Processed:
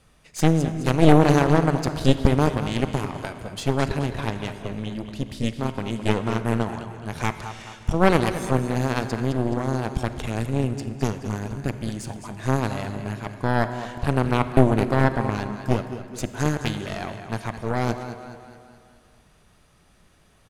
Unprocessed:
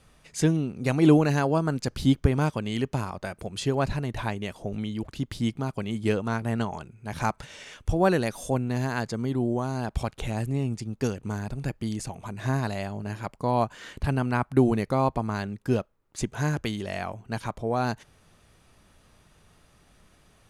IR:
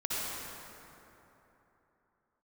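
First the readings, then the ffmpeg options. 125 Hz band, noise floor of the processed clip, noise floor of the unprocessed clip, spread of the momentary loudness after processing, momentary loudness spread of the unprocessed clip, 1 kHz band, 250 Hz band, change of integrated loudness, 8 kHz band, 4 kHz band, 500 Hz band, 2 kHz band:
+4.0 dB, -58 dBFS, -61 dBFS, 13 LU, 11 LU, +4.0 dB, +3.0 dB, +3.5 dB, +2.5 dB, +4.5 dB, +4.0 dB, +4.0 dB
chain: -filter_complex "[0:a]aecho=1:1:212|424|636|848|1060|1272:0.335|0.167|0.0837|0.0419|0.0209|0.0105,aeval=exprs='0.501*(cos(1*acos(clip(val(0)/0.501,-1,1)))-cos(1*PI/2))+0.251*(cos(4*acos(clip(val(0)/0.501,-1,1)))-cos(4*PI/2))':c=same,asplit=2[a][b];[1:a]atrim=start_sample=2205,asetrate=66150,aresample=44100[c];[b][c]afir=irnorm=-1:irlink=0,volume=-14dB[d];[a][d]amix=inputs=2:normalize=0,volume=-1dB"

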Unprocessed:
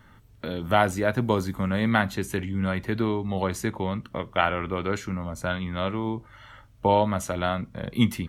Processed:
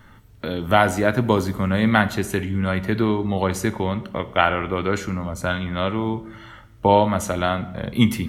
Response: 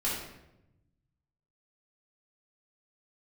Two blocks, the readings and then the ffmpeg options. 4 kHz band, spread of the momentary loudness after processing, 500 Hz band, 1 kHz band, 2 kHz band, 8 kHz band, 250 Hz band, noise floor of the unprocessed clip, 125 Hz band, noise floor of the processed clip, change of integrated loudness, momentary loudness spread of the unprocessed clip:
+5.0 dB, 10 LU, +5.0 dB, +5.0 dB, +5.0 dB, +5.0 dB, +5.0 dB, -53 dBFS, +4.5 dB, -48 dBFS, +5.0 dB, 9 LU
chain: -filter_complex "[0:a]asplit=2[a][b];[1:a]atrim=start_sample=2205,highshelf=f=12k:g=8[c];[b][c]afir=irnorm=-1:irlink=0,volume=-18.5dB[d];[a][d]amix=inputs=2:normalize=0,volume=4dB"

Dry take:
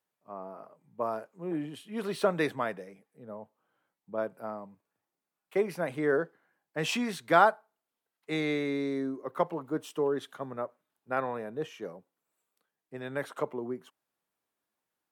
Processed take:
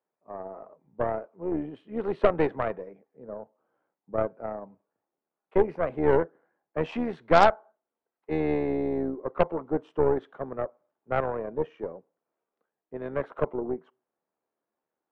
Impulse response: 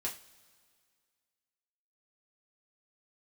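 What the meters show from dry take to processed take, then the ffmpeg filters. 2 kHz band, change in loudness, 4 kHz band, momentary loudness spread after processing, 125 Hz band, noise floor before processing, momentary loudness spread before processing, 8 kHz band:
-1.5 dB, +3.5 dB, -3.5 dB, 17 LU, +5.0 dB, under -85 dBFS, 17 LU, under -10 dB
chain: -filter_complex "[0:a]lowpass=2.2k,tremolo=f=77:d=0.4,equalizer=f=480:w=0.45:g=12.5,asplit=2[a][b];[1:a]atrim=start_sample=2205,afade=t=out:st=0.31:d=0.01,atrim=end_sample=14112[c];[b][c]afir=irnorm=-1:irlink=0,volume=-22dB[d];[a][d]amix=inputs=2:normalize=0,aeval=exprs='1.19*(cos(1*acos(clip(val(0)/1.19,-1,1)))-cos(1*PI/2))+0.119*(cos(8*acos(clip(val(0)/1.19,-1,1)))-cos(8*PI/2))':c=same,volume=-5.5dB"

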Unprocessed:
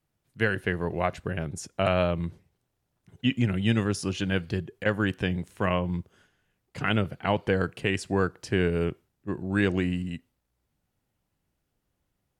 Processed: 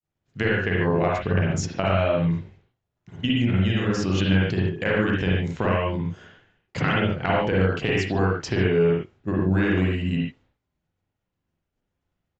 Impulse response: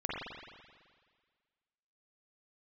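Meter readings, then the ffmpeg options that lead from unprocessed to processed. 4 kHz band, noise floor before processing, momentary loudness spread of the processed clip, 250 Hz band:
+4.0 dB, -79 dBFS, 7 LU, +4.5 dB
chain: -filter_complex "[0:a]acontrast=47,aresample=16000,aresample=44100,acompressor=threshold=-27dB:ratio=6,agate=range=-33dB:threshold=-60dB:ratio=3:detection=peak[a];[1:a]atrim=start_sample=2205,afade=t=out:st=0.2:d=0.01,atrim=end_sample=9261[b];[a][b]afir=irnorm=-1:irlink=0,volume=5dB"

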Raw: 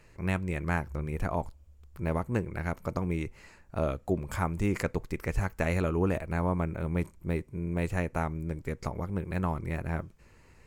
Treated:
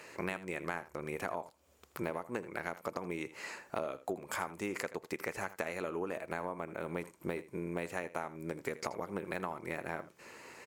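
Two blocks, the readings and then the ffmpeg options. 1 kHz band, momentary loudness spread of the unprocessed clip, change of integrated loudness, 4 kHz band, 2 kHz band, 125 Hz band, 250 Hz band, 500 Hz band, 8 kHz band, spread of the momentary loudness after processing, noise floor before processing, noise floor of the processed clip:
-4.0 dB, 6 LU, -7.5 dB, -0.5 dB, -3.0 dB, -17.5 dB, -9.5 dB, -5.0 dB, 0.0 dB, 4 LU, -58 dBFS, -67 dBFS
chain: -filter_complex "[0:a]highpass=360,acompressor=threshold=-45dB:ratio=10,asplit=2[a][b];[b]aecho=0:1:81:0.158[c];[a][c]amix=inputs=2:normalize=0,volume=11dB"

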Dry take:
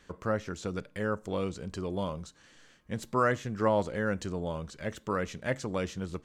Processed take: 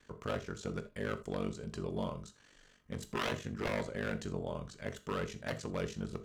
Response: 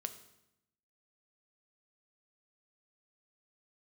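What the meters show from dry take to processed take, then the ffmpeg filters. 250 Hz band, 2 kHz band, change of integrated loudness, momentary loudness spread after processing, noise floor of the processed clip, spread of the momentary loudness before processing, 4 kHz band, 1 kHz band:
-5.5 dB, -5.5 dB, -6.5 dB, 6 LU, -65 dBFS, 10 LU, -0.5 dB, -9.0 dB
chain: -filter_complex "[0:a]aeval=exprs='0.0596*(abs(mod(val(0)/0.0596+3,4)-2)-1)':c=same,aeval=exprs='val(0)*sin(2*PI*24*n/s)':c=same[a];[1:a]atrim=start_sample=2205,atrim=end_sample=3969[b];[a][b]afir=irnorm=-1:irlink=0"

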